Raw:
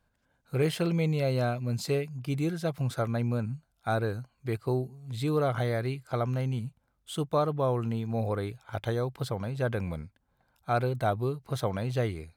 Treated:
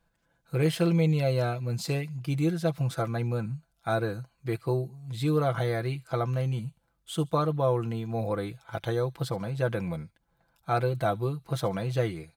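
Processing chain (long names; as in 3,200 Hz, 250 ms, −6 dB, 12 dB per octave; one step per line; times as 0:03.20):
comb filter 6 ms, depth 58%
delay with a high-pass on its return 72 ms, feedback 38%, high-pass 3,600 Hz, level −18 dB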